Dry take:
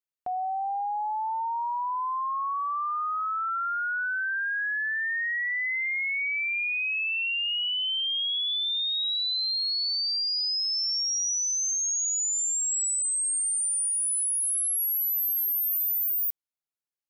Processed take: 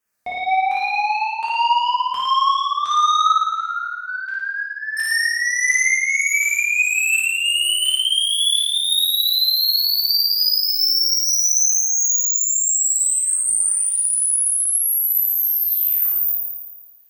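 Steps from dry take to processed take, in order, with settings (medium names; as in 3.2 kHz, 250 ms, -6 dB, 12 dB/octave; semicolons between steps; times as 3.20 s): peaking EQ 1.7 kHz +7.5 dB 0.29 oct; in parallel at +3 dB: peak limiter -29.5 dBFS, peak gain reduction 11 dB; 3.40–4.97 s: on the sum: feedback comb 88 Hz, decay 0.65 s, harmonics odd, mix 90%; LFO notch saw down 1.4 Hz 850–4200 Hz; saturation -16 dBFS, distortion -28 dB; Chebyshev shaper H 5 -10 dB, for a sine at -18.5 dBFS; on a send: flutter echo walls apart 9.5 m, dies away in 1.3 s; on the sum: gated-style reverb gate 170 ms falling, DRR -3.5 dB; trim -3 dB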